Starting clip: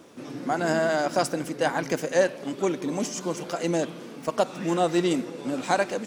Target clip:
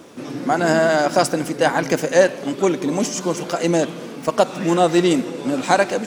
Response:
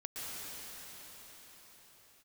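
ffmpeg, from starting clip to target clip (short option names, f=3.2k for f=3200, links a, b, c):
-filter_complex "[0:a]asplit=2[a][b];[1:a]atrim=start_sample=2205,afade=t=out:st=0.36:d=0.01,atrim=end_sample=16317[c];[b][c]afir=irnorm=-1:irlink=0,volume=-18.5dB[d];[a][d]amix=inputs=2:normalize=0,volume=7dB"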